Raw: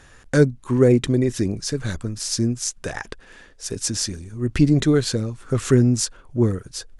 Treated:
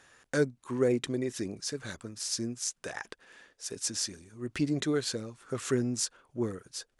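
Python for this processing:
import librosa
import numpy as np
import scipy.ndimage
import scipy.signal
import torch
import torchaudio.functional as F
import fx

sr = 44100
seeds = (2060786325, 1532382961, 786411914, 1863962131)

y = fx.highpass(x, sr, hz=400.0, slope=6)
y = F.gain(torch.from_numpy(y), -7.5).numpy()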